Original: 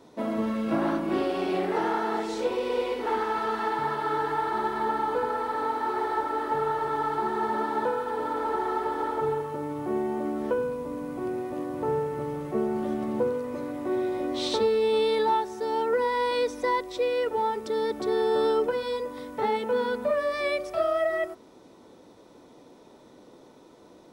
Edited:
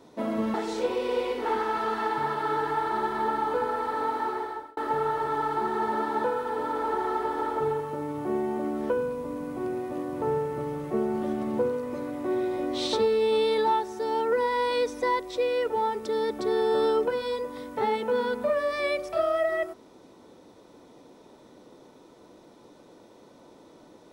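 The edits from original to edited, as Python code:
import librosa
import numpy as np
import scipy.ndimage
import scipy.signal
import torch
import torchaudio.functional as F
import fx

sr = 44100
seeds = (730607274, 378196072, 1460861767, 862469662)

y = fx.edit(x, sr, fx.cut(start_s=0.54, length_s=1.61),
    fx.fade_out_span(start_s=5.82, length_s=0.56), tone=tone)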